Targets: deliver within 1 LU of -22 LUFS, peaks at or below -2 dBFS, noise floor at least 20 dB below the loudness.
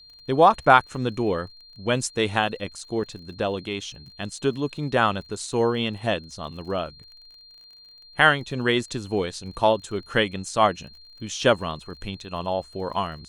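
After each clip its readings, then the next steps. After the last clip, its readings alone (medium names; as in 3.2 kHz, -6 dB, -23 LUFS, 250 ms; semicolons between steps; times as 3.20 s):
tick rate 36 per s; steady tone 4.2 kHz; tone level -47 dBFS; loudness -24.0 LUFS; peak level -1.0 dBFS; loudness target -22.0 LUFS
-> de-click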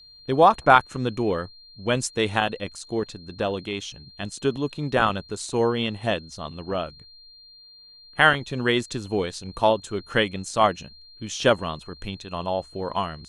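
tick rate 0 per s; steady tone 4.2 kHz; tone level -47 dBFS
-> band-stop 4.2 kHz, Q 30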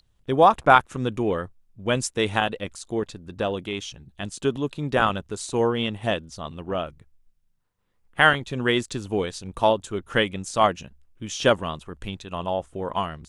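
steady tone not found; loudness -24.0 LUFS; peak level -1.0 dBFS; loudness target -22.0 LUFS
-> trim +2 dB; peak limiter -2 dBFS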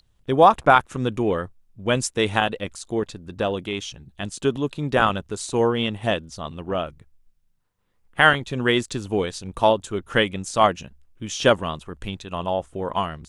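loudness -22.5 LUFS; peak level -2.0 dBFS; noise floor -64 dBFS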